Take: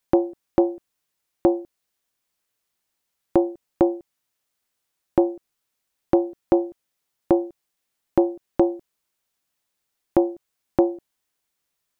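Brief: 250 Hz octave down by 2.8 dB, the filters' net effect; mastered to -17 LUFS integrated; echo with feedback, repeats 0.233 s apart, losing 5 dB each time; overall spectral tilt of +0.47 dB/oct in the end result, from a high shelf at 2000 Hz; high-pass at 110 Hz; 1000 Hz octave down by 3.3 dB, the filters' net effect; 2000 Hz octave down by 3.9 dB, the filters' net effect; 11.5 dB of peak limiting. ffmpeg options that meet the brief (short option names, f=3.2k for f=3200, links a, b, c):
-af "highpass=110,equalizer=f=250:t=o:g=-4.5,equalizer=f=1k:t=o:g=-5,highshelf=f=2k:g=7.5,equalizer=f=2k:t=o:g=-7.5,alimiter=limit=-19.5dB:level=0:latency=1,aecho=1:1:233|466|699|932|1165|1398|1631:0.562|0.315|0.176|0.0988|0.0553|0.031|0.0173,volume=16.5dB"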